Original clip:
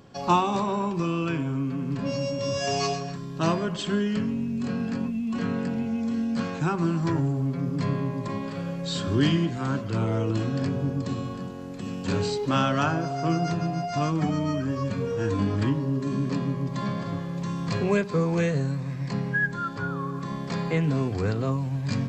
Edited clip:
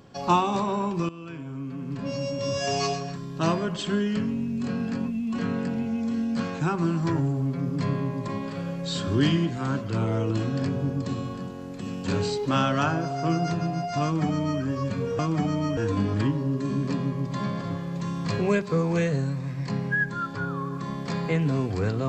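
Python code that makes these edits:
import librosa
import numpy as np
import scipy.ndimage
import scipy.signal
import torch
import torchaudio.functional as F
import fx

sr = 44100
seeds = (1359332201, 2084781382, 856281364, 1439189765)

y = fx.edit(x, sr, fx.fade_in_from(start_s=1.09, length_s=1.39, floor_db=-16.5),
    fx.duplicate(start_s=14.03, length_s=0.58, to_s=15.19), tone=tone)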